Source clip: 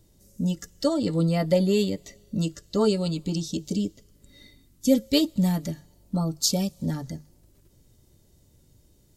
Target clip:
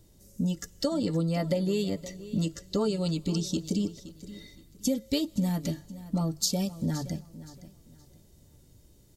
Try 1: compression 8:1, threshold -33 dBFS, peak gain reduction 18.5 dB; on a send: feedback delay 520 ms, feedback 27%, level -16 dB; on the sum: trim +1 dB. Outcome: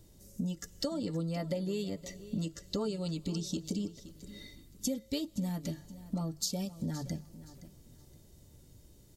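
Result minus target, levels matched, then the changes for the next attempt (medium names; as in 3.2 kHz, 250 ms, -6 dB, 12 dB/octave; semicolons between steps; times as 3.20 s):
compression: peak gain reduction +7 dB
change: compression 8:1, threshold -25 dBFS, peak gain reduction 11.5 dB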